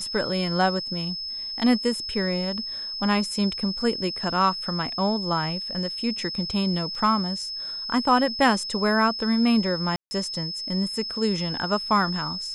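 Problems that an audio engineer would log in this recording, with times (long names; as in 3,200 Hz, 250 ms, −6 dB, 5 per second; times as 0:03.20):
whistle 5,200 Hz −30 dBFS
0:06.95: drop-out 2.9 ms
0:09.96–0:10.11: drop-out 150 ms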